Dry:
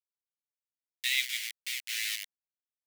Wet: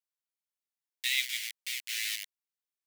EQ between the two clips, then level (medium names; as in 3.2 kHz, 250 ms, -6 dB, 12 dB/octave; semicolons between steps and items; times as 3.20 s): high-pass 1.1 kHz 6 dB/octave; 0.0 dB